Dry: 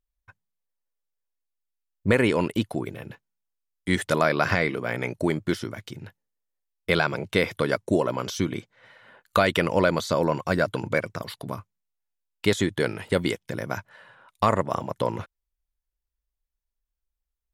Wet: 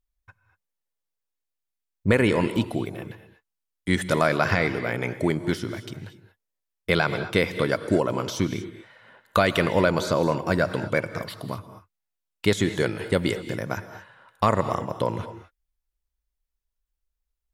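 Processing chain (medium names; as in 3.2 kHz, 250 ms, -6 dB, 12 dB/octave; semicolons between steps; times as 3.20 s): bass shelf 160 Hz +3 dB; gated-style reverb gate 260 ms rising, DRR 11 dB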